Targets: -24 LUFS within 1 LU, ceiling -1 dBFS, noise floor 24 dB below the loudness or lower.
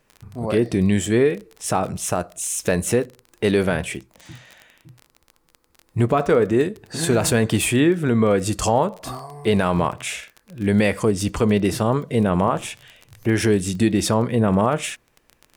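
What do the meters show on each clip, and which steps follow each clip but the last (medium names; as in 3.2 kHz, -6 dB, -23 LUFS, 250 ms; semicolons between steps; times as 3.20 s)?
tick rate 24 per s; loudness -20.5 LUFS; peak level -6.5 dBFS; loudness target -24.0 LUFS
-> de-click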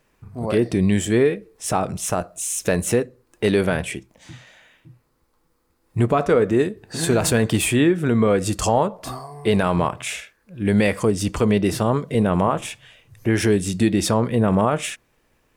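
tick rate 0.77 per s; loudness -20.5 LUFS; peak level -6.5 dBFS; loudness target -24.0 LUFS
-> trim -3.5 dB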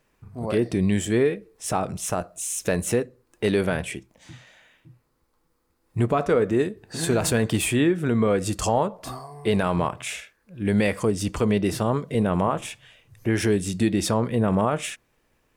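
loudness -24.0 LUFS; peak level -10.0 dBFS; noise floor -69 dBFS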